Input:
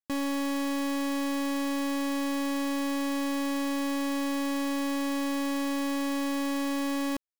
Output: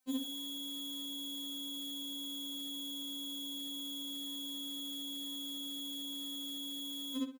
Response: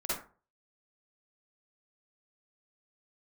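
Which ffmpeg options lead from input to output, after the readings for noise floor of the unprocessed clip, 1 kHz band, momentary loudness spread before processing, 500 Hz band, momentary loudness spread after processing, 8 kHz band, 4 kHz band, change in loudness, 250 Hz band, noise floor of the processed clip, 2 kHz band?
−29 dBFS, −28.5 dB, 0 LU, −25.0 dB, 0 LU, −7.0 dB, +2.5 dB, −9.5 dB, −15.5 dB, −42 dBFS, −30.5 dB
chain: -filter_complex "[0:a]asplit=2[link_01][link_02];[link_02]adelay=63,lowpass=frequency=3700:poles=1,volume=-15dB,asplit=2[link_03][link_04];[link_04]adelay=63,lowpass=frequency=3700:poles=1,volume=0.3,asplit=2[link_05][link_06];[link_06]adelay=63,lowpass=frequency=3700:poles=1,volume=0.3[link_07];[link_03][link_05][link_07]amix=inputs=3:normalize=0[link_08];[link_01][link_08]amix=inputs=2:normalize=0,aeval=exprs='(mod(66.8*val(0)+1,2)-1)/66.8':channel_layout=same,aeval=exprs='0.0126*(cos(1*acos(clip(val(0)/0.0126,-1,1)))-cos(1*PI/2))+0.000501*(cos(5*acos(clip(val(0)/0.0126,-1,1)))-cos(5*PI/2))':channel_layout=same,highpass=94,bandreject=frequency=388.7:width_type=h:width=4,bandreject=frequency=777.4:width_type=h:width=4,bandreject=frequency=1166.1:width_type=h:width=4,bandreject=frequency=1554.8:width_type=h:width=4,bandreject=frequency=1943.5:width_type=h:width=4,bandreject=frequency=2332.2:width_type=h:width=4,afftfilt=real='re*3.46*eq(mod(b,12),0)':imag='im*3.46*eq(mod(b,12),0)':win_size=2048:overlap=0.75,volume=15.5dB"

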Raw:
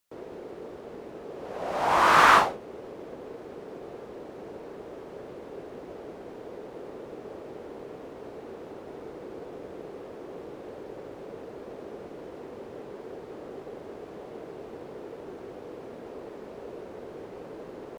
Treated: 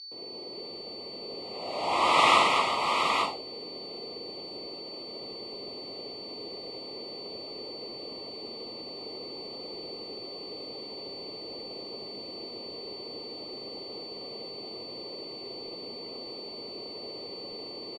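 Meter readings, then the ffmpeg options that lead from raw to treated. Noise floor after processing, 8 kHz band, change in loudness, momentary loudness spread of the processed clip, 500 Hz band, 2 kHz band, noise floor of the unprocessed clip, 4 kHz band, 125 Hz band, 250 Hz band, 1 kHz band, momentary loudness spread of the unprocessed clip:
−42 dBFS, −0.5 dB, −7.0 dB, 13 LU, −2.0 dB, −4.0 dB, −44 dBFS, +8.5 dB, −5.0 dB, −2.0 dB, −2.5 dB, 12 LU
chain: -filter_complex "[0:a]bass=frequency=250:gain=2,treble=frequency=4000:gain=-8,acrossover=split=180[link_01][link_02];[link_02]aexciter=amount=3.8:drive=3.7:freq=2600[link_03];[link_01][link_03]amix=inputs=2:normalize=0,aeval=exprs='0.708*(cos(1*acos(clip(val(0)/0.708,-1,1)))-cos(1*PI/2))+0.00562*(cos(2*acos(clip(val(0)/0.708,-1,1)))-cos(2*PI/2))+0.0794*(cos(3*acos(clip(val(0)/0.708,-1,1)))-cos(3*PI/2))':channel_layout=same,highpass=120,equalizer=frequency=160:width_type=q:width=4:gain=-5,equalizer=frequency=1900:width_type=q:width=4:gain=7,equalizer=frequency=6000:width_type=q:width=4:gain=-8,lowpass=frequency=8700:width=0.5412,lowpass=frequency=8700:width=1.3066,aecho=1:1:80|224|351|374|681|861:0.631|0.631|0.299|0.211|0.376|0.562,aeval=exprs='val(0)+0.0126*sin(2*PI*4500*n/s)':channel_layout=same,asuperstop=centerf=1600:order=8:qfactor=2.2,volume=-2.5dB" -ar 48000 -c:a libopus -b:a 32k

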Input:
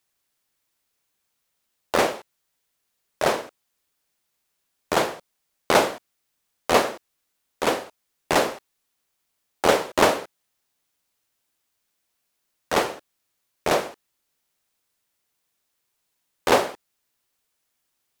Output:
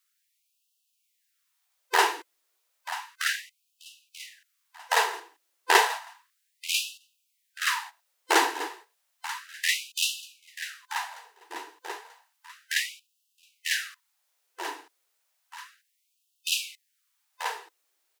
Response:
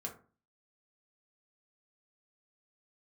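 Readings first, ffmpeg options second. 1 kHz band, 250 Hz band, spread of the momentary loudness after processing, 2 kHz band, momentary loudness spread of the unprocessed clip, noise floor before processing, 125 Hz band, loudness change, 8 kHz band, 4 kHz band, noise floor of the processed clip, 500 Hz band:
−3.5 dB, −13.0 dB, 21 LU, +1.0 dB, 17 LU, −76 dBFS, below −40 dB, −4.5 dB, +1.5 dB, +1.5 dB, −75 dBFS, −13.0 dB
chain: -af "afftfilt=real='real(if(lt(b,1008),b+24*(1-2*mod(floor(b/24),2)),b),0)':imag='imag(if(lt(b,1008),b+24*(1-2*mod(floor(b/24),2)),b),0)':win_size=2048:overlap=0.75,aecho=1:1:936|1872|2808|3744:0.237|0.104|0.0459|0.0202,afftfilt=real='re*gte(b*sr/1024,290*pow(2600/290,0.5+0.5*sin(2*PI*0.32*pts/sr)))':imag='im*gte(b*sr/1024,290*pow(2600/290,0.5+0.5*sin(2*PI*0.32*pts/sr)))':win_size=1024:overlap=0.75,volume=1dB"

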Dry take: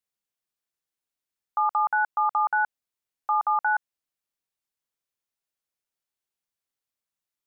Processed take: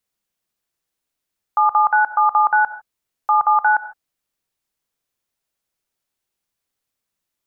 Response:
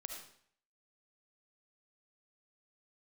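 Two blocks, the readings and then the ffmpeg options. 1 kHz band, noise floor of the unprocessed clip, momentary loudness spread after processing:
+8.5 dB, below −85 dBFS, 7 LU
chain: -filter_complex "[0:a]asplit=2[link_01][link_02];[1:a]atrim=start_sample=2205,afade=type=out:start_time=0.21:duration=0.01,atrim=end_sample=9702,lowshelf=frequency=490:gain=8[link_03];[link_02][link_03]afir=irnorm=-1:irlink=0,volume=0dB[link_04];[link_01][link_04]amix=inputs=2:normalize=0,volume=3.5dB"

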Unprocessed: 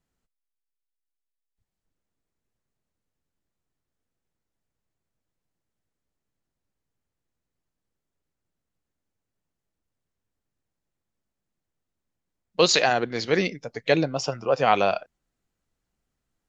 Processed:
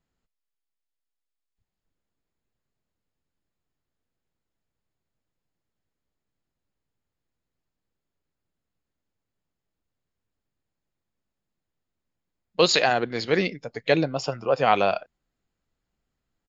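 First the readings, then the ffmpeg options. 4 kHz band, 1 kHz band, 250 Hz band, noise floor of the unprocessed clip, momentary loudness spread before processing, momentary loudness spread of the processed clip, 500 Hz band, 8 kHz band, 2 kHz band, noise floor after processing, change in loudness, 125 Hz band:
−0.5 dB, 0.0 dB, 0.0 dB, −84 dBFS, 11 LU, 11 LU, 0.0 dB, can't be measured, 0.0 dB, −85 dBFS, 0.0 dB, 0.0 dB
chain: -af "bandreject=frequency=5900:width=5.2,aresample=16000,aresample=44100"

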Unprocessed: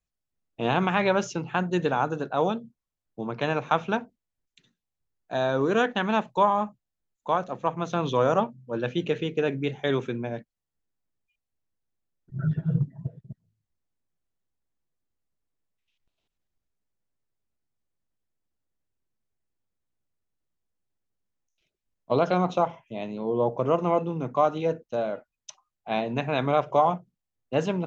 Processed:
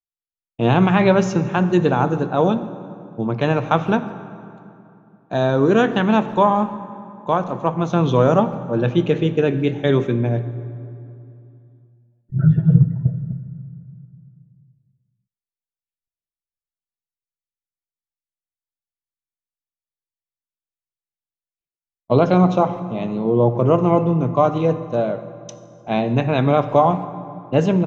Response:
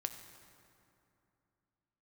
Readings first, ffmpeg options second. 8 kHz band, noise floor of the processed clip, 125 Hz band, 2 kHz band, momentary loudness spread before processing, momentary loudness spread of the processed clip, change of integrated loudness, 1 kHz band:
can't be measured, below −85 dBFS, +13.0 dB, +4.0 dB, 11 LU, 17 LU, +8.0 dB, +5.5 dB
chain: -filter_complex "[0:a]asplit=2[link_01][link_02];[link_02]adelay=150,highpass=300,lowpass=3400,asoftclip=type=hard:threshold=-18.5dB,volume=-24dB[link_03];[link_01][link_03]amix=inputs=2:normalize=0,agate=range=-33dB:threshold=-49dB:ratio=3:detection=peak,lowshelf=frequency=380:gain=10,asplit=2[link_04][link_05];[1:a]atrim=start_sample=2205[link_06];[link_05][link_06]afir=irnorm=-1:irlink=0,volume=5dB[link_07];[link_04][link_07]amix=inputs=2:normalize=0,volume=-4.5dB"

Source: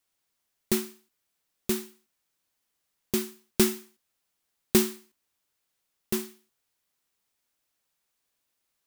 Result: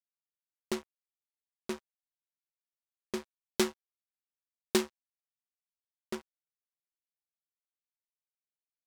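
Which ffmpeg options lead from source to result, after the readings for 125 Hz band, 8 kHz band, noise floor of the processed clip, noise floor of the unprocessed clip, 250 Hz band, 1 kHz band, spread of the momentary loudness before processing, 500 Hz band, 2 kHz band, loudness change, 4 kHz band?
−11.5 dB, −9.5 dB, below −85 dBFS, −80 dBFS, −8.5 dB, −0.5 dB, 18 LU, −5.0 dB, −3.5 dB, −8.0 dB, −4.5 dB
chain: -af "adynamicsmooth=sensitivity=2:basefreq=750,bass=frequency=250:gain=-14,treble=frequency=4000:gain=10,aeval=exprs='sgn(val(0))*max(abs(val(0))-0.0112,0)':channel_layout=same"

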